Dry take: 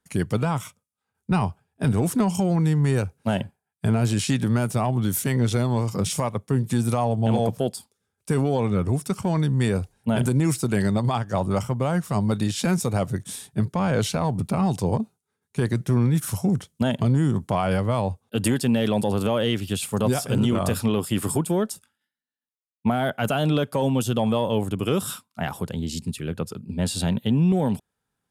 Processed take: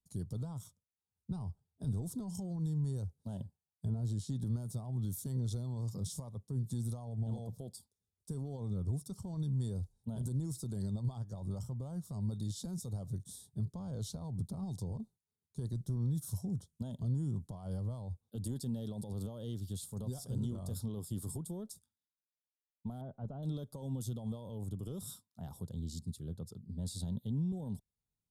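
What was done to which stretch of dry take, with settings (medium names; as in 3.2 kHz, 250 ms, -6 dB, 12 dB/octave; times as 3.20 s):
3.85–4.41 s: treble shelf 2.5 kHz -7.5 dB
23.01–23.43 s: low-pass 1.2 kHz
whole clip: FFT filter 300 Hz 0 dB, 960 Hz +10 dB, 2.5 kHz -22 dB, 3.6 kHz +4 dB; peak limiter -15.5 dBFS; amplifier tone stack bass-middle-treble 10-0-1; trim +2 dB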